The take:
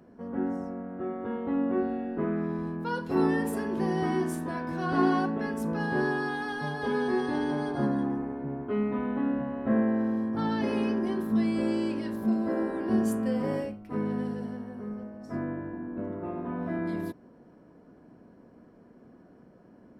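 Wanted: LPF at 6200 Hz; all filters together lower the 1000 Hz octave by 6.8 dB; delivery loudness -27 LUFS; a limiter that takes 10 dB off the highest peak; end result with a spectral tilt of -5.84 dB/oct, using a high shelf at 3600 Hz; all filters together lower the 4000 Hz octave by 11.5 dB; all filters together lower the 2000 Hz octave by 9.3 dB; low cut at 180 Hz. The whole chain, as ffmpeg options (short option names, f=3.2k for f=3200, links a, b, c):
-af "highpass=180,lowpass=6.2k,equalizer=f=1k:t=o:g=-7,equalizer=f=2k:t=o:g=-6.5,highshelf=f=3.6k:g=-6.5,equalizer=f=4k:t=o:g=-7.5,volume=7.5dB,alimiter=limit=-17.5dB:level=0:latency=1"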